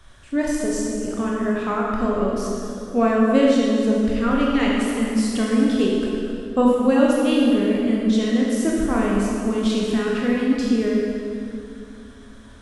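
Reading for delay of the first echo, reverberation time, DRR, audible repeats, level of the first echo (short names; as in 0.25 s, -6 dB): none, 2.6 s, -4.0 dB, none, none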